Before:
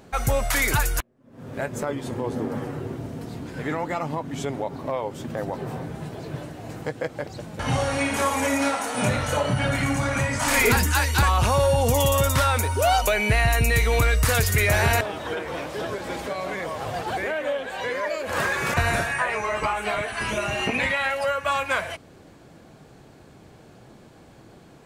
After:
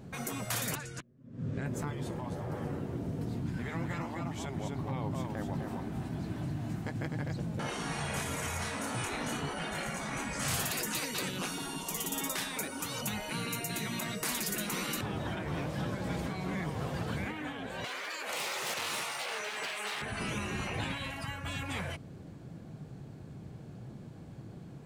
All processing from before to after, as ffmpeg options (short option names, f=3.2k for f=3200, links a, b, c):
-filter_complex "[0:a]asettb=1/sr,asplit=3[a][b][c];[a]atrim=end=0.754[d];[b]atrim=start=0.75:end=1.66,asetpts=PTS-STARTPTS,afade=t=in:d=0.004:c=qsin,afade=t=out:st=0.906:d=0.004:c=qsin,lowpass=f=8.1k:w=0.5412,lowpass=f=8.1k:w=1.3066,equalizer=f=820:w=2:g=-8,acompressor=threshold=-27dB:ratio=6:attack=3.2:release=140:knee=1:detection=peak[e];[c]atrim=start=1.656[f];[d][e]acrossfade=d=0.004:c1=hsin:c2=qsin[g];[g][f]acrossfade=d=0.004:c1=qsin:c2=hsin,asettb=1/sr,asplit=3[h][i][j];[h]atrim=end=3.424[k];[i]atrim=start=3.42:end=7.36,asetpts=PTS-STARTPTS,afade=t=in:d=0.004:c=qsin,afade=t=out:st=3.936:d=0.004:c=qsin,equalizer=f=490:w=2.6:g=-12,aecho=1:1:254:0.531,atrim=end_sample=173754[l];[j]atrim=start=7.356[m];[k][l]acrossfade=d=0.004:c1=hsin:c2=qsin[n];[n][m]acrossfade=d=0.004:c1=qsin:c2=hsin,asettb=1/sr,asplit=3[o][p][q];[o]atrim=end=17.844[r];[p]atrim=start=17.84:end=20.02,asetpts=PTS-STARTPTS,afade=t=in:d=0.004:c=qsin,afade=t=out:st=2.176:d=0.004:c=qsin,acontrast=68,volume=17.5dB,asoftclip=hard,volume=-17.5dB,highpass=890[s];[q]atrim=start=20.016[t];[r][s]acrossfade=d=0.004:c1=hsin:c2=qsin[u];[u][t]acrossfade=d=0.004:c1=qsin:c2=hsin,lowshelf=f=65:g=5,afftfilt=real='re*lt(hypot(re,im),0.158)':imag='im*lt(hypot(re,im),0.158)':win_size=1024:overlap=0.75,equalizer=f=140:t=o:w=2.1:g=14,volume=-8dB"